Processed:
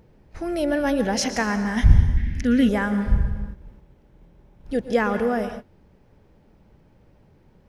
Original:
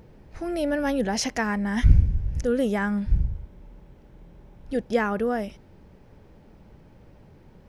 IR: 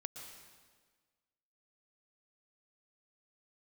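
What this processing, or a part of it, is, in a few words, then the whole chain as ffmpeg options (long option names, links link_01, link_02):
keyed gated reverb: -filter_complex "[0:a]asplit=3[link_01][link_02][link_03];[1:a]atrim=start_sample=2205[link_04];[link_02][link_04]afir=irnorm=-1:irlink=0[link_05];[link_03]apad=whole_len=339055[link_06];[link_05][link_06]sidechaingate=range=-33dB:threshold=-43dB:ratio=16:detection=peak,volume=5.5dB[link_07];[link_01][link_07]amix=inputs=2:normalize=0,asettb=1/sr,asplit=3[link_08][link_09][link_10];[link_08]atrim=end=2.174[link_11];[link_09]atrim=start=2.17:end=2.69,asetpts=PTS-STARTPTS,afade=type=in:duration=0.004:curve=qsin,afade=type=out:start_time=0.516:duration=0.004:curve=qsin,equalizer=frequency=125:width_type=o:width=1:gain=-10,equalizer=frequency=250:width_type=o:width=1:gain=11,equalizer=frequency=500:width_type=o:width=1:gain=-9,equalizer=frequency=1000:width_type=o:width=1:gain=-8,equalizer=frequency=2000:width_type=o:width=1:gain=12,equalizer=frequency=4000:width_type=o:width=1:gain=4,equalizer=frequency=8000:width_type=o:width=1:gain=-6[link_12];[link_10]atrim=start=2.686[link_13];[link_11][link_12]acrossfade=duration=0.004:curve1=hsin:curve2=qsin[link_14];[link_14][link_13]acrossfade=duration=0.004:curve1=qsin:curve2=hsin,volume=-4.5dB"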